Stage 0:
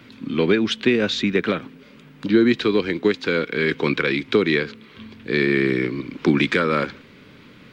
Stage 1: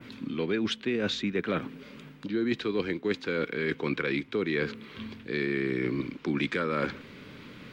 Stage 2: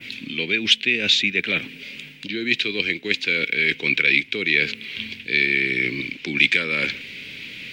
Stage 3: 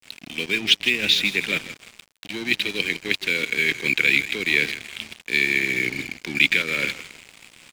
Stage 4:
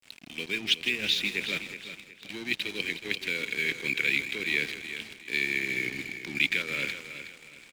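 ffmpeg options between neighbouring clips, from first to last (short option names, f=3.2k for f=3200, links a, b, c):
-af "adynamicequalizer=threshold=0.01:dfrequency=4500:dqfactor=0.75:tfrequency=4500:tqfactor=0.75:attack=5:release=100:ratio=0.375:range=2:mode=cutabove:tftype=bell,areverse,acompressor=threshold=-26dB:ratio=6,areverse"
-af "highshelf=f=1.7k:t=q:w=3:g=12.5"
-filter_complex "[0:a]asplit=6[a][b][c][d][e][f];[b]adelay=159,afreqshift=-35,volume=-11dB[g];[c]adelay=318,afreqshift=-70,volume=-17.9dB[h];[d]adelay=477,afreqshift=-105,volume=-24.9dB[i];[e]adelay=636,afreqshift=-140,volume=-31.8dB[j];[f]adelay=795,afreqshift=-175,volume=-38.7dB[k];[a][g][h][i][j][k]amix=inputs=6:normalize=0,aeval=exprs='sgn(val(0))*max(abs(val(0))-0.0237,0)':c=same"
-af "aecho=1:1:369|738|1107|1476:0.282|0.0958|0.0326|0.0111,volume=-8dB"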